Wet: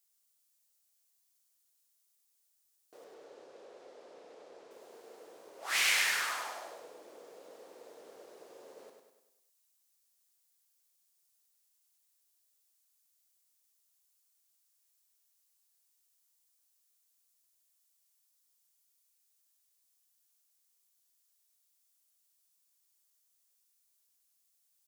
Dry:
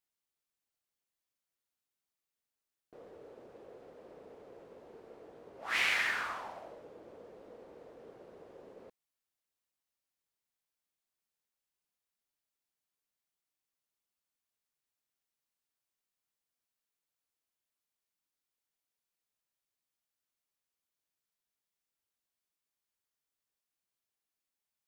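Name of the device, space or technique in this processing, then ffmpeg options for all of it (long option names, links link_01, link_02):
parallel distortion: -filter_complex "[0:a]asettb=1/sr,asplit=3[link_01][link_02][link_03];[link_01]atrim=end=3.044[link_04];[link_02]atrim=start=3.04:end=4.71,asetpts=PTS-STARTPTS,afade=type=in:duration=0.004:curve=qsin,afade=type=out:start_time=1.666:duration=0.004:curve=qsin,lowpass=5700[link_05];[link_03]atrim=start=4.706[link_06];[link_04][link_05]acrossfade=duration=0.004:curve1=hsin:curve2=qsin[link_07];[link_07][link_06]acrossfade=duration=0.004:curve1=qsin:curve2=hsin,highpass=frequency=250:poles=1,bass=frequency=250:gain=-12,treble=frequency=4000:gain=15,asplit=2[link_08][link_09];[link_09]asoftclip=type=hard:threshold=-34.5dB,volume=-5dB[link_10];[link_08][link_10]amix=inputs=2:normalize=0,aecho=1:1:100|200|300|400|500|600:0.531|0.271|0.138|0.0704|0.0359|0.0183,volume=-3.5dB"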